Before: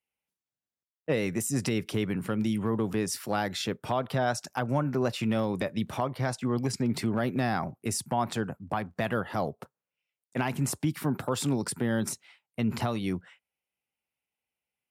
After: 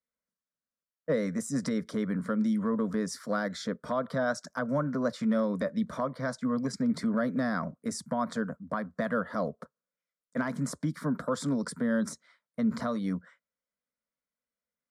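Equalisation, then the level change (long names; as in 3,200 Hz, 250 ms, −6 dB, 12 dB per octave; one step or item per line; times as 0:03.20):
high-frequency loss of the air 74 metres
phaser with its sweep stopped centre 540 Hz, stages 8
+2.0 dB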